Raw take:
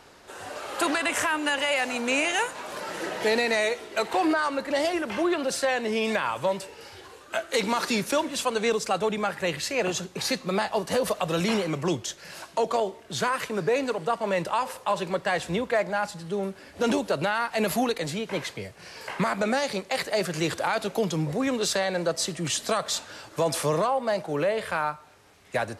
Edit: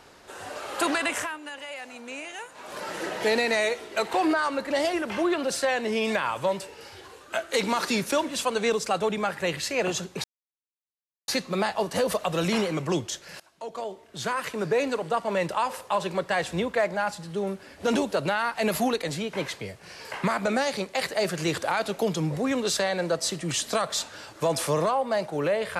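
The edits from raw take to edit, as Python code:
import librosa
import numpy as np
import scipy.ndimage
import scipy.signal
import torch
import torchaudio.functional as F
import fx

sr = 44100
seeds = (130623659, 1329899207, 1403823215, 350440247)

y = fx.edit(x, sr, fx.fade_down_up(start_s=1.04, length_s=1.79, db=-13.0, fade_s=0.34),
    fx.insert_silence(at_s=10.24, length_s=1.04),
    fx.fade_in_from(start_s=12.36, length_s=1.28, floor_db=-23.0), tone=tone)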